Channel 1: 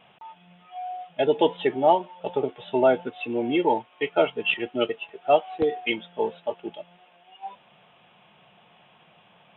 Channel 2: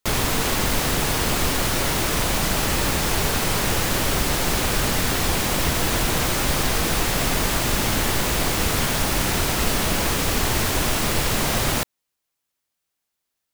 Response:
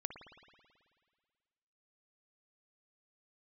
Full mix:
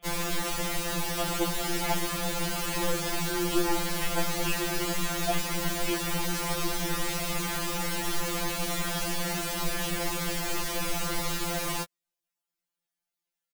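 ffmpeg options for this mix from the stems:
-filter_complex "[0:a]aeval=exprs='(tanh(12.6*val(0)+0.55)-tanh(0.55))/12.6':channel_layout=same,volume=-2dB,asplit=2[link_01][link_02];[link_02]volume=-19.5dB[link_03];[1:a]volume=-6.5dB[link_04];[link_03]aecho=0:1:1153|2306|3459|4612:1|0.27|0.0729|0.0197[link_05];[link_01][link_04][link_05]amix=inputs=3:normalize=0,afftfilt=real='re*2.83*eq(mod(b,8),0)':imag='im*2.83*eq(mod(b,8),0)':win_size=2048:overlap=0.75"

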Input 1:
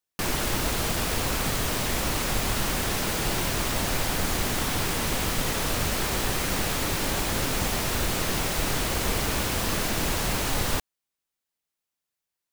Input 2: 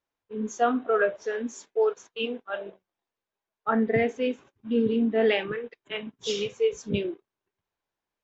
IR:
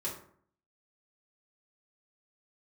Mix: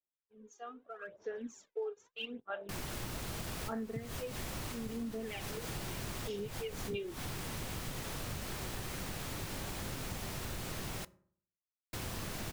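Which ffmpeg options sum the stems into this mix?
-filter_complex "[0:a]adelay=2500,volume=-13dB,asplit=3[link_01][link_02][link_03];[link_01]atrim=end=11.05,asetpts=PTS-STARTPTS,afade=type=out:start_time=11.046:duration=0.004:curve=hsin[link_04];[link_02]atrim=start=11.05:end=11.93,asetpts=PTS-STARTPTS,volume=0[link_05];[link_03]atrim=start=11.93,asetpts=PTS-STARTPTS,afade=type=in:duration=0.004:curve=hsin[link_06];[link_04][link_05][link_06]concat=n=3:v=0:a=1,asplit=2[link_07][link_08];[link_08]volume=-20dB[link_09];[1:a]aphaser=in_gain=1:out_gain=1:delay=2.5:decay=0.66:speed=0.79:type=sinusoidal,acrossover=split=570[link_10][link_11];[link_10]aeval=exprs='val(0)*(1-0.5/2+0.5/2*cos(2*PI*2.5*n/s))':channel_layout=same[link_12];[link_11]aeval=exprs='val(0)*(1-0.5/2-0.5/2*cos(2*PI*2.5*n/s))':channel_layout=same[link_13];[link_12][link_13]amix=inputs=2:normalize=0,volume=2dB,afade=type=in:start_time=0.98:duration=0.48:silence=0.237137,afade=type=out:start_time=3.52:duration=0.69:silence=0.473151,afade=type=in:start_time=6.25:duration=0.64:silence=0.251189,asplit=2[link_14][link_15];[link_15]apad=whole_len=662607[link_16];[link_07][link_16]sidechaincompress=threshold=-45dB:ratio=10:attack=9.4:release=132[link_17];[2:a]atrim=start_sample=2205[link_18];[link_09][link_18]afir=irnorm=-1:irlink=0[link_19];[link_17][link_14][link_19]amix=inputs=3:normalize=0,adynamicequalizer=threshold=0.00178:dfrequency=120:dqfactor=1:tfrequency=120:tqfactor=1:attack=5:release=100:ratio=0.375:range=3:mode=boostabove:tftype=bell,acompressor=threshold=-37dB:ratio=4"

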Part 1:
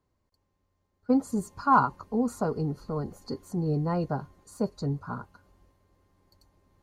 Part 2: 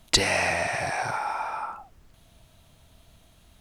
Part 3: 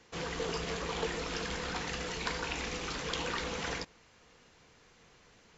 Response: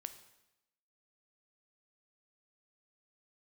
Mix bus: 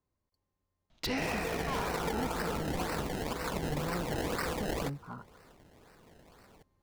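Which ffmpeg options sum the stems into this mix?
-filter_complex "[0:a]asoftclip=type=hard:threshold=-24.5dB,volume=-8.5dB[link_01];[1:a]lowpass=frequency=5800:width=0.5412,lowpass=frequency=5800:width=1.3066,asoftclip=type=hard:threshold=-19.5dB,adelay=900,volume=-10.5dB[link_02];[2:a]acrusher=samples=26:mix=1:aa=0.000001:lfo=1:lforange=26:lforate=2,adelay=1050,volume=3dB[link_03];[link_01][link_02][link_03]amix=inputs=3:normalize=0,alimiter=limit=-24dB:level=0:latency=1:release=132"

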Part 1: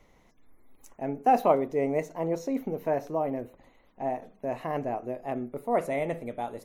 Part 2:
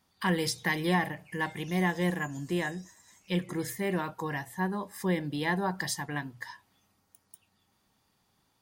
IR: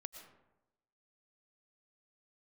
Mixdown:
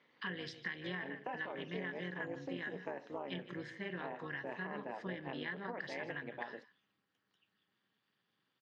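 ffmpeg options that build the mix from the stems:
-filter_complex "[0:a]highpass=frequency=290:poles=1,alimiter=limit=-20.5dB:level=0:latency=1:release=354,volume=-3.5dB[link_01];[1:a]bandreject=frequency=900:width=8.1,volume=-6.5dB,asplit=2[link_02][link_03];[link_03]volume=-17dB,aecho=0:1:156:1[link_04];[link_01][link_02][link_04]amix=inputs=3:normalize=0,tremolo=f=220:d=0.788,highpass=frequency=130:width=0.5412,highpass=frequency=130:width=1.3066,equalizer=frequency=700:width_type=q:width=4:gain=-6,equalizer=frequency=1700:width_type=q:width=4:gain=9,equalizer=frequency=3000:width_type=q:width=4:gain=7,lowpass=frequency=4400:width=0.5412,lowpass=frequency=4400:width=1.3066,acompressor=threshold=-38dB:ratio=6"

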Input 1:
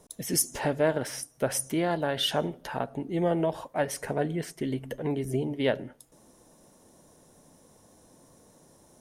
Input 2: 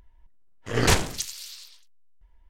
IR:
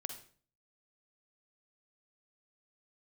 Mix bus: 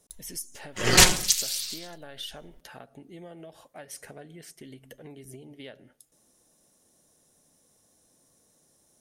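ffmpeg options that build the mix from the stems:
-filter_complex "[0:a]bandreject=frequency=960:width=6.6,acompressor=threshold=-30dB:ratio=5,volume=-12.5dB[link_01];[1:a]aecho=1:1:5.5:0.65,adelay=100,volume=-2dB[link_02];[link_01][link_02]amix=inputs=2:normalize=0,highshelf=frequency=2100:gain=10.5"

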